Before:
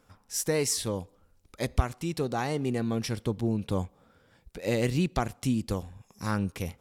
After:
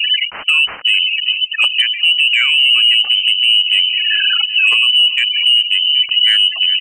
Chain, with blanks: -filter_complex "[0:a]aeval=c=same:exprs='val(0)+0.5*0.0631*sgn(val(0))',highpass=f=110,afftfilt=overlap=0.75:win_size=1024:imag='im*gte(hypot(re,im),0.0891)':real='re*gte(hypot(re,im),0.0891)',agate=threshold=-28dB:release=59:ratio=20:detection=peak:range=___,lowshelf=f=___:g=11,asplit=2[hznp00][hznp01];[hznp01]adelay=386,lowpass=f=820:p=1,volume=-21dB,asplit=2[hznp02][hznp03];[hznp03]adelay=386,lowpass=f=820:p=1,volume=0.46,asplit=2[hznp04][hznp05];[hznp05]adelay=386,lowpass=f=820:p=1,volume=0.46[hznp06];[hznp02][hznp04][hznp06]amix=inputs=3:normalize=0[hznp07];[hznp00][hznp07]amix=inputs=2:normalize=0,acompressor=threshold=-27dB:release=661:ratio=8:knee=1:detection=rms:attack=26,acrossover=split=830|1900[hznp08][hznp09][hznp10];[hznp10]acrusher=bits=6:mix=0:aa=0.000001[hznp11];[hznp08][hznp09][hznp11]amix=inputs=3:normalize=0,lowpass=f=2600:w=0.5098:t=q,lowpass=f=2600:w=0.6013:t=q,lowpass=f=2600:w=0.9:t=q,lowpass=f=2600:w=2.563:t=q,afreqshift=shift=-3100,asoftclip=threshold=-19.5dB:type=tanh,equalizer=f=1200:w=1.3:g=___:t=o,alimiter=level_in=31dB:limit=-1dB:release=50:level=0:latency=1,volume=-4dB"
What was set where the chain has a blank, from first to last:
-10dB, 150, 2.5